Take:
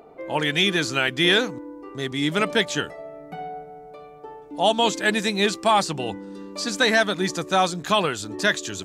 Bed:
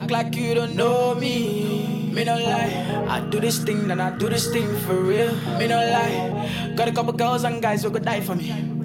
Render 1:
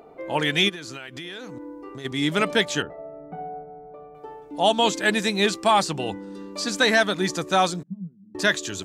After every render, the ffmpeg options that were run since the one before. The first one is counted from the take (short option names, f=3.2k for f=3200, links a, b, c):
-filter_complex "[0:a]asplit=3[a][b][c];[a]afade=t=out:st=0.68:d=0.02[d];[b]acompressor=threshold=-32dB:ratio=16:attack=3.2:release=140:knee=1:detection=peak,afade=t=in:st=0.68:d=0.02,afade=t=out:st=2.04:d=0.02[e];[c]afade=t=in:st=2.04:d=0.02[f];[d][e][f]amix=inputs=3:normalize=0,asettb=1/sr,asplit=3[g][h][i];[g]atrim=end=2.824[j];[h]atrim=start=2.82:end=4.15,asetpts=PTS-STARTPTS,afade=t=in:d=0.004:c=qsin,afade=t=out:st=1.326:d=0.004:c=qsin,lowpass=1.1k[k];[i]atrim=start=4.146[l];[j][k]acrossfade=d=0.004:c1=hsin:c2=qsin[m];[m][l]acrossfade=d=0.004:c1=qsin:c2=hsin,asettb=1/sr,asplit=3[n][o][p];[n]atrim=end=7.834[q];[o]atrim=start=7.83:end=8.35,asetpts=PTS-STARTPTS,afade=t=in:d=0.004:c=qsin,afade=t=out:st=0.516:d=0.004:c=qsin,asuperpass=centerf=180:order=4:qfactor=5.1[r];[p]atrim=start=8.346[s];[q][r]acrossfade=d=0.004:c1=hsin:c2=qsin[t];[t][s]acrossfade=d=0.004:c1=qsin:c2=hsin"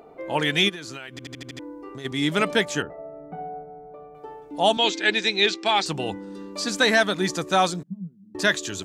-filter_complex "[0:a]asettb=1/sr,asplit=3[a][b][c];[a]atrim=end=2.594[d];[b]atrim=start=2.59:end=3.16,asetpts=PTS-STARTPTS,afade=t=in:d=0.004:c=qsin,afade=t=out:st=0.566:d=0.004:c=qsin,equalizer=f=3.7k:t=o:w=0.77:g=-6.5[e];[c]atrim=start=3.156[f];[d][e]acrossfade=d=0.004:c1=hsin:c2=qsin[g];[g][f]acrossfade=d=0.004:c1=qsin:c2=hsin,asettb=1/sr,asplit=3[h][i][j];[h]atrim=end=4.774[k];[i]atrim=start=4.77:end=5.86,asetpts=PTS-STARTPTS,afade=t=in:d=0.004:c=qsin,afade=t=out:st=1.086:d=0.004:c=qsin,highpass=340,equalizer=f=350:t=q:w=4:g=6,equalizer=f=570:t=q:w=4:g=-10,equalizer=f=1.1k:t=q:w=4:g=-9,equalizer=f=2.3k:t=q:w=4:g=5,equalizer=f=3.7k:t=q:w=4:g=5,lowpass=f=6.3k:w=0.5412,lowpass=f=6.3k:w=1.3066[l];[j]atrim=start=5.856[m];[k][l]acrossfade=d=0.004:c1=hsin:c2=qsin[n];[n][m]acrossfade=d=0.004:c1=qsin:c2=hsin,asplit=7[o][p][q][r][s][t][u];[o]atrim=end=1.192[v];[p]atrim=start=1.108:end=1.192[w];[q]atrim=start=1.108:end=1.192[x];[r]atrim=start=1.108:end=1.192[y];[s]atrim=start=1.108:end=1.192[z];[t]atrim=start=1.108:end=1.192[aa];[u]atrim=start=1.588[ab];[v][w]acrossfade=d=0.004:c1=hsin:c2=hsin[ac];[ac][x]acrossfade=d=0.004:c1=hsin:c2=hsin[ad];[ad][y]acrossfade=d=0.004:c1=hsin:c2=hsin[ae];[ae][z]acrossfade=d=0.004:c1=hsin:c2=hsin[af];[af][aa]acrossfade=d=0.004:c1=hsin:c2=hsin[ag];[ag][ab]acrossfade=d=0.004:c1=hsin:c2=hsin"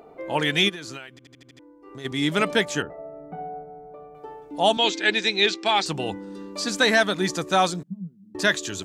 -filter_complex "[0:a]asplit=3[a][b][c];[a]atrim=end=1.19,asetpts=PTS-STARTPTS,afade=t=out:st=0.97:d=0.22:silence=0.237137[d];[b]atrim=start=1.19:end=1.81,asetpts=PTS-STARTPTS,volume=-12.5dB[e];[c]atrim=start=1.81,asetpts=PTS-STARTPTS,afade=t=in:d=0.22:silence=0.237137[f];[d][e][f]concat=n=3:v=0:a=1"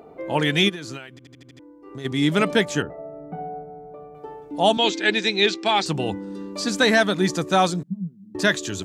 -af "highpass=51,lowshelf=f=380:g=6.5"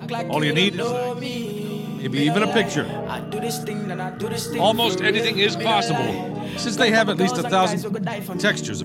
-filter_complex "[1:a]volume=-5dB[a];[0:a][a]amix=inputs=2:normalize=0"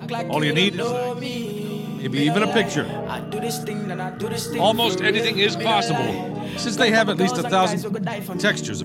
-af anull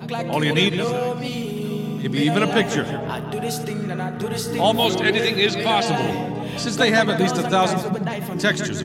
-filter_complex "[0:a]asplit=2[a][b];[b]adelay=154,lowpass=f=2.5k:p=1,volume=-9.5dB,asplit=2[c][d];[d]adelay=154,lowpass=f=2.5k:p=1,volume=0.48,asplit=2[e][f];[f]adelay=154,lowpass=f=2.5k:p=1,volume=0.48,asplit=2[g][h];[h]adelay=154,lowpass=f=2.5k:p=1,volume=0.48,asplit=2[i][j];[j]adelay=154,lowpass=f=2.5k:p=1,volume=0.48[k];[a][c][e][g][i][k]amix=inputs=6:normalize=0"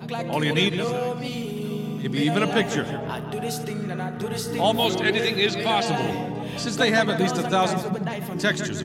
-af "volume=-3dB"